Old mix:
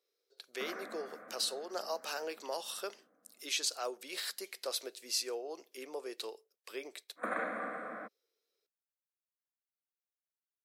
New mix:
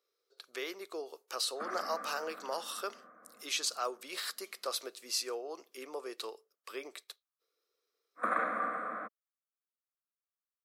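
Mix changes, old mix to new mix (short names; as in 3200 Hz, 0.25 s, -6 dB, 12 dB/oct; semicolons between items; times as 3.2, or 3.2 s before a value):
background: entry +1.00 s; master: add bell 1200 Hz +9.5 dB 0.46 oct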